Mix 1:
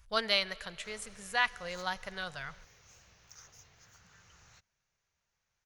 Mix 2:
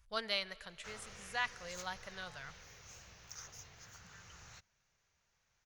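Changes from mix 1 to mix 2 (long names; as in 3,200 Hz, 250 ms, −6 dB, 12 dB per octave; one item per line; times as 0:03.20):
speech −7.5 dB
background +4.5 dB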